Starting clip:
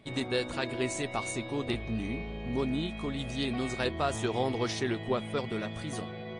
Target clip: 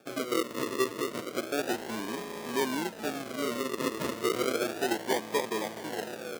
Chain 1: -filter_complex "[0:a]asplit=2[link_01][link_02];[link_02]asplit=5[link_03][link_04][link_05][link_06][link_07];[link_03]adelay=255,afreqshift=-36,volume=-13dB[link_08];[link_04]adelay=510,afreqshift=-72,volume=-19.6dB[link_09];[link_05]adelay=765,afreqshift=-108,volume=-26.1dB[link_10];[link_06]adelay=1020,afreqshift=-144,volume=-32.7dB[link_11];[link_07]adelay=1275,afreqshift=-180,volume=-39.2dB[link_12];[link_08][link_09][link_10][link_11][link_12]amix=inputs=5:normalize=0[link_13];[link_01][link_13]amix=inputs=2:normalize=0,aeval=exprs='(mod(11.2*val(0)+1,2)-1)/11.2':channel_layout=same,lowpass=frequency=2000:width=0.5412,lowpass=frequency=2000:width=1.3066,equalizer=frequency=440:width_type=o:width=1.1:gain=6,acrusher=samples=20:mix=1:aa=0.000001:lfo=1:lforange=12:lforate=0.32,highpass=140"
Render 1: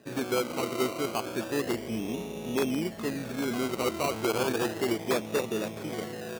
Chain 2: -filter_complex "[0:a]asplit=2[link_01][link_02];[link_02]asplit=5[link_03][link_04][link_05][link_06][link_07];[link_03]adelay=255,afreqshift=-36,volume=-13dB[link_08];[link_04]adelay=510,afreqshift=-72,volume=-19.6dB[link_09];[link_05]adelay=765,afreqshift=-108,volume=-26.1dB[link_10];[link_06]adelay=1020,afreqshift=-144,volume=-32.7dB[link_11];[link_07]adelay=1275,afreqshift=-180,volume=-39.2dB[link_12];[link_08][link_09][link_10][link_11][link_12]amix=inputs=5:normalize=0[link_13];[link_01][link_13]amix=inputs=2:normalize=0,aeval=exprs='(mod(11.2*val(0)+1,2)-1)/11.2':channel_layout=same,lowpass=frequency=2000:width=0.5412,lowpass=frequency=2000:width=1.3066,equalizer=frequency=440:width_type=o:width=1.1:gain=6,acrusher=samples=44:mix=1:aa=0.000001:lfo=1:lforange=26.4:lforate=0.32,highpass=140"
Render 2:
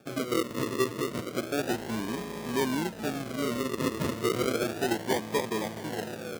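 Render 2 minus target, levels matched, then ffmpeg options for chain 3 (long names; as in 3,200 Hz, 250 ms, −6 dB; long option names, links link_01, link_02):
125 Hz band +8.5 dB
-filter_complex "[0:a]asplit=2[link_01][link_02];[link_02]asplit=5[link_03][link_04][link_05][link_06][link_07];[link_03]adelay=255,afreqshift=-36,volume=-13dB[link_08];[link_04]adelay=510,afreqshift=-72,volume=-19.6dB[link_09];[link_05]adelay=765,afreqshift=-108,volume=-26.1dB[link_10];[link_06]adelay=1020,afreqshift=-144,volume=-32.7dB[link_11];[link_07]adelay=1275,afreqshift=-180,volume=-39.2dB[link_12];[link_08][link_09][link_10][link_11][link_12]amix=inputs=5:normalize=0[link_13];[link_01][link_13]amix=inputs=2:normalize=0,aeval=exprs='(mod(11.2*val(0)+1,2)-1)/11.2':channel_layout=same,lowpass=frequency=2000:width=0.5412,lowpass=frequency=2000:width=1.3066,equalizer=frequency=440:width_type=o:width=1.1:gain=6,acrusher=samples=44:mix=1:aa=0.000001:lfo=1:lforange=26.4:lforate=0.32,highpass=290"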